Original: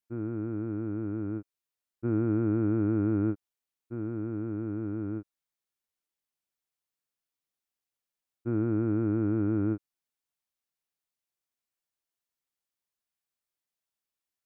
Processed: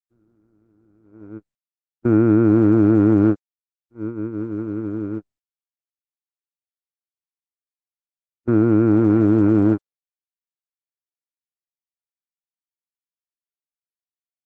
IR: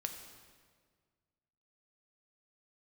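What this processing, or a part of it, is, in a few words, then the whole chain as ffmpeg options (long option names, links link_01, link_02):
video call: -af "highpass=frequency=140:poles=1,dynaudnorm=framelen=170:gausssize=13:maxgain=9dB,agate=range=-32dB:threshold=-24dB:ratio=16:detection=peak,volume=5dB" -ar 48000 -c:a libopus -b:a 12k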